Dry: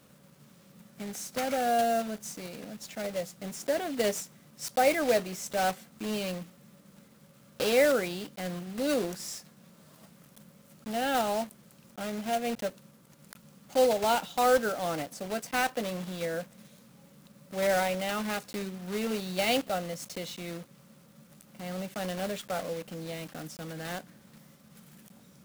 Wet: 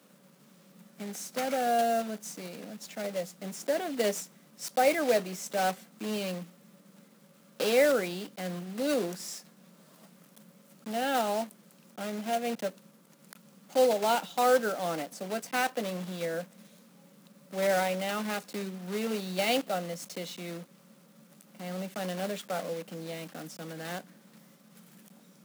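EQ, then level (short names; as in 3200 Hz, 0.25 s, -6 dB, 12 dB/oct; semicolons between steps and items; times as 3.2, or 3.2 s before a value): Chebyshev high-pass 170 Hz, order 4; 0.0 dB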